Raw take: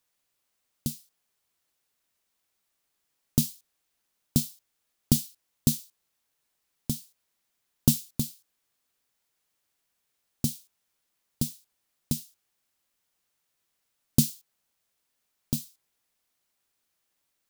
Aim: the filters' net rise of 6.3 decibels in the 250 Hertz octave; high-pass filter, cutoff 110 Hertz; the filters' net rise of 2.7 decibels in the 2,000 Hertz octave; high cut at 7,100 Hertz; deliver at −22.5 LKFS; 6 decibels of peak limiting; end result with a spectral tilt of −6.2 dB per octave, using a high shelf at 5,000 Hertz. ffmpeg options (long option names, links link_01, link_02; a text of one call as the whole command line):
ffmpeg -i in.wav -af "highpass=110,lowpass=7100,equalizer=frequency=250:width_type=o:gain=7.5,equalizer=frequency=2000:width_type=o:gain=5.5,highshelf=frequency=5000:gain=-7,volume=8.5dB,alimiter=limit=-1dB:level=0:latency=1" out.wav